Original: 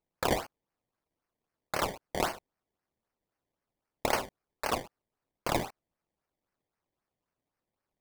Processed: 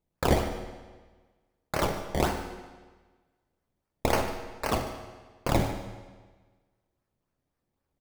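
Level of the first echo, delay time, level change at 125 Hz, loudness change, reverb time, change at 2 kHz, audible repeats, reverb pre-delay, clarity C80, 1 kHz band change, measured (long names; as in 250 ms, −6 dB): −15.5 dB, 147 ms, +11.5 dB, +3.5 dB, 1.4 s, +1.5 dB, 1, 11 ms, 8.0 dB, +2.5 dB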